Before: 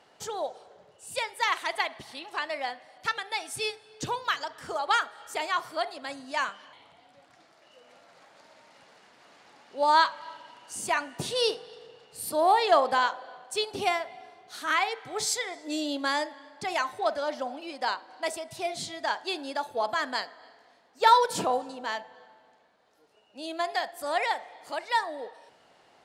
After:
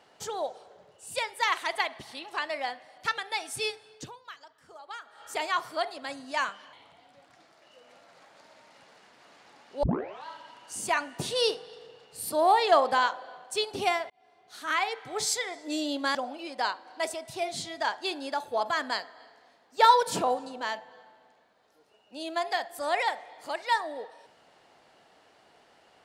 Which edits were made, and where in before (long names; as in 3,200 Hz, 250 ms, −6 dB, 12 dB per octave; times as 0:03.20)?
0:03.87–0:05.29: duck −17 dB, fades 0.25 s
0:09.83: tape start 0.43 s
0:14.10–0:15.24: fade in equal-power
0:16.15–0:17.38: remove